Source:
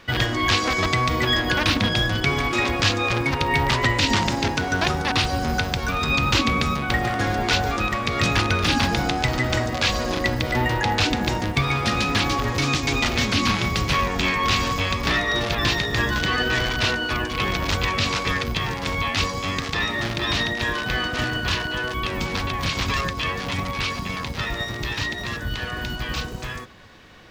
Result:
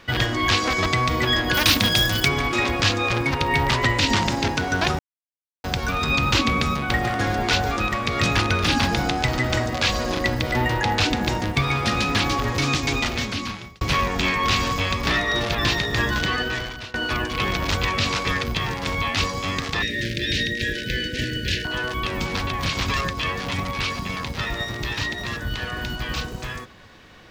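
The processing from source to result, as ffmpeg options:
-filter_complex "[0:a]asplit=3[a][b][c];[a]afade=t=out:st=1.53:d=0.02[d];[b]aemphasis=mode=production:type=75fm,afade=t=in:st=1.53:d=0.02,afade=t=out:st=2.27:d=0.02[e];[c]afade=t=in:st=2.27:d=0.02[f];[d][e][f]amix=inputs=3:normalize=0,asettb=1/sr,asplit=3[g][h][i];[g]atrim=end=19.824[j];[h]atrim=start=19.82:end=21.65,asetpts=PTS-STARTPTS,afade=t=in:d=0.004:c=qsin,afade=t=out:st=1.826:d=0.004:c=qsin,asuperstop=centerf=950:order=12:qfactor=0.93[k];[i]atrim=start=21.646[l];[j][k]acrossfade=d=0.004:c1=hsin:c2=qsin[m];[m][l]acrossfade=d=0.004:c1=qsin:c2=hsin,asplit=5[n][o][p][q][r];[n]atrim=end=4.99,asetpts=PTS-STARTPTS,afade=t=out:st=4.986:d=0.004:c=hsin[s];[o]atrim=start=4.99:end=5.64,asetpts=PTS-STARTPTS,volume=0[t];[p]atrim=start=5.64:end=13.81,asetpts=PTS-STARTPTS,afade=t=in:d=0.004:c=hsin,afade=t=out:st=7.21:d=0.96[u];[q]atrim=start=13.81:end=16.94,asetpts=PTS-STARTPTS,afade=t=in:d=0.004:c=hsin,afade=t=out:st=2.41:d=0.72:silence=0.0668344[v];[r]atrim=start=16.94,asetpts=PTS-STARTPTS,afade=t=in:d=0.004:c=hsin:silence=0.0668344[w];[s][t][u][v][w]concat=n=5:v=0:a=1"

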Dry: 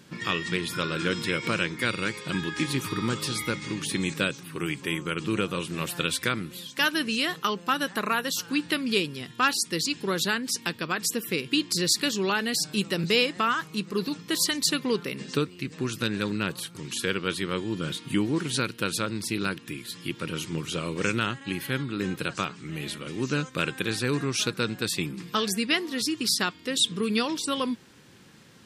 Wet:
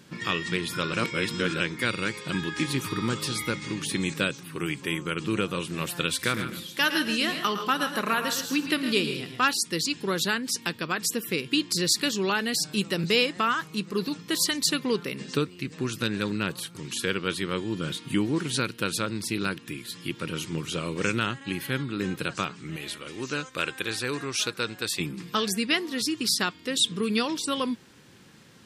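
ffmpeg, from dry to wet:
-filter_complex "[0:a]asettb=1/sr,asplit=3[a][b][c];[a]atrim=end=6.134[d];[b]atrim=start=6.13:end=9.45,asetpts=PTS-STARTPTS,afade=t=in:d=0.004:c=qsin,afade=t=out:st=3.316:d=0.004:c=qsin,aecho=1:1:58|110|136|159|255:0.106|0.282|0.251|0.211|0.106,atrim=end_sample=146412[e];[c]atrim=start=9.446[f];[d][e]acrossfade=d=0.004:c1=hsin:c2=qsin[g];[g][f]acrossfade=d=0.004:c1=qsin:c2=hsin,asettb=1/sr,asplit=3[h][i][j];[h]atrim=end=22.764[k];[i]atrim=start=22.76:end=25,asetpts=PTS-STARTPTS,afade=t=in:d=0.004:c=qsin,afade=t=out:st=2.236:d=0.004:c=qsin,equalizer=f=170:w=0.78:g=-10[l];[j]atrim=start=24.996[m];[k][l]acrossfade=d=0.004:c1=hsin:c2=qsin[n];[n][m]acrossfade=d=0.004:c1=qsin:c2=hsin,asplit=3[o][p][q];[o]atrim=end=0.932[r];[p]atrim=start=0.928:end=1.602,asetpts=PTS-STARTPTS,areverse[s];[q]atrim=start=1.598[t];[r][s]acrossfade=d=0.004:c1=hsin:c2=hsin[u];[u][t]acrossfade=d=0.004:c1=hsin:c2=hsin"

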